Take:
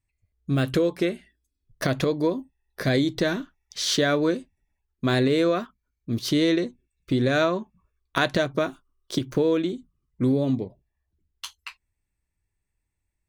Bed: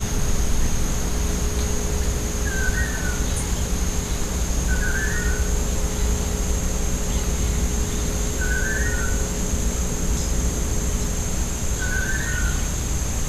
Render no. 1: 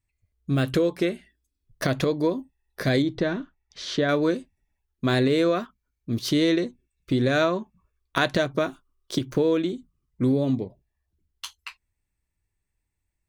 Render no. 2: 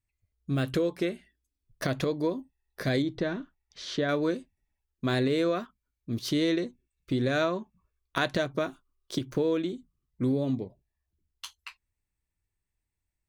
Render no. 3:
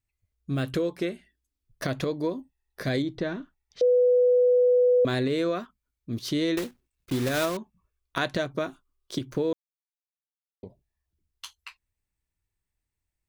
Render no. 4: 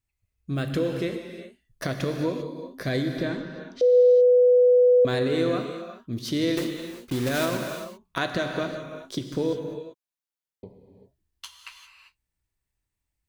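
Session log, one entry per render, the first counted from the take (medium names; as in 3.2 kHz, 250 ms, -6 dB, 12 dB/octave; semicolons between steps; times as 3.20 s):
3.02–4.09 s: tape spacing loss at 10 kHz 20 dB
trim -5 dB
3.81–5.05 s: bleep 495 Hz -16.5 dBFS; 6.57–7.57 s: block-companded coder 3-bit; 9.53–10.63 s: mute
gated-style reverb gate 420 ms flat, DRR 4 dB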